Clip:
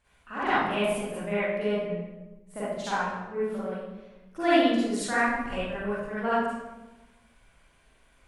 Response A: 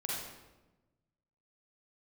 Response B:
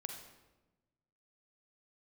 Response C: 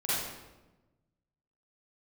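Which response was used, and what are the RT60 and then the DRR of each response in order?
C; 1.1 s, 1.1 s, 1.1 s; -5.0 dB, 3.5 dB, -11.5 dB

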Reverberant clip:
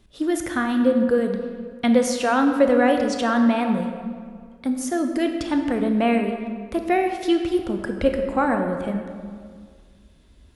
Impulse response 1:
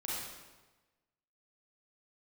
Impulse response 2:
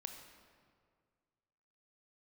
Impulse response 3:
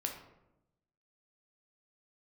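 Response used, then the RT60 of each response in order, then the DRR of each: 2; 1.2 s, 2.0 s, 0.90 s; -7.0 dB, 4.5 dB, 1.5 dB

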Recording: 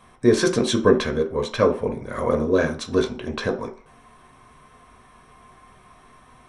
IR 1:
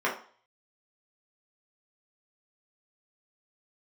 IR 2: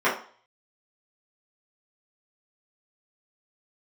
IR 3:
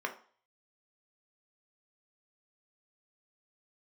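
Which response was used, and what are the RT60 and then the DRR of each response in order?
3; 0.45 s, 0.45 s, 0.45 s; -5.5 dB, -11.0 dB, 3.0 dB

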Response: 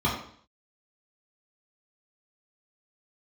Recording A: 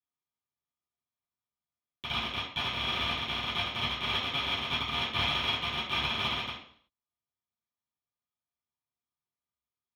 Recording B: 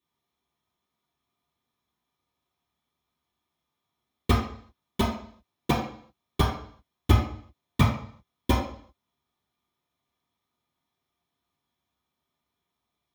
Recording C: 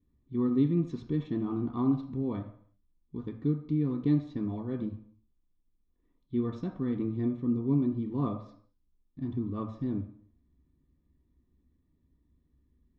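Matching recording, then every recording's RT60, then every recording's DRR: B; 0.55 s, 0.55 s, 0.55 s; -15.5 dB, -6.5 dB, 2.5 dB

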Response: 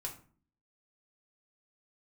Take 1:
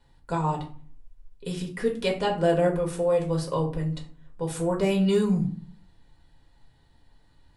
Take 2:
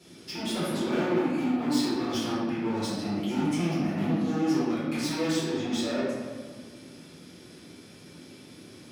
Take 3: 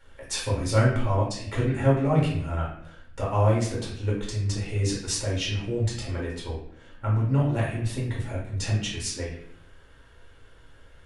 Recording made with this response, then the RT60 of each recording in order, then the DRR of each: 1; 0.45 s, 1.7 s, 0.70 s; -0.5 dB, -10.5 dB, -6.0 dB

